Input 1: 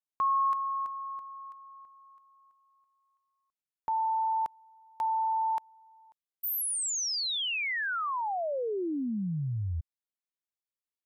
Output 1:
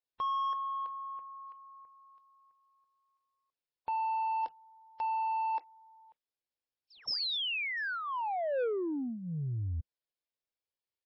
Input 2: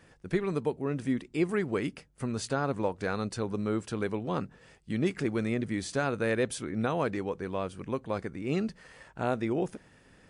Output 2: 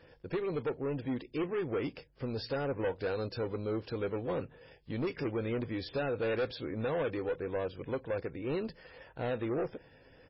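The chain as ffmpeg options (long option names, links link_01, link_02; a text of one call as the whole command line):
ffmpeg -i in.wav -af "equalizer=frequency=200:width_type=o:width=0.33:gain=-11,equalizer=frequency=500:width_type=o:width=0.33:gain=8,equalizer=frequency=1250:width_type=o:width=0.33:gain=-6,equalizer=frequency=2000:width_type=o:width=0.33:gain=-3,aresample=16000,asoftclip=type=tanh:threshold=-28dB,aresample=44100" -ar 16000 -c:a libmp3lame -b:a 16k out.mp3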